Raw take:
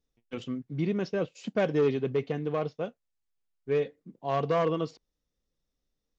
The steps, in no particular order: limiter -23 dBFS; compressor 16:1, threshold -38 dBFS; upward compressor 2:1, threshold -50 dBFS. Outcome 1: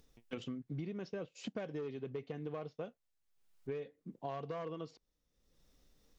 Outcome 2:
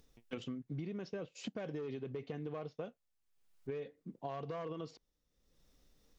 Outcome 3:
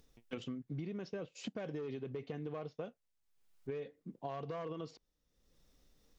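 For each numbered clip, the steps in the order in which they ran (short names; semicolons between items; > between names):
upward compressor > compressor > limiter; upward compressor > limiter > compressor; limiter > upward compressor > compressor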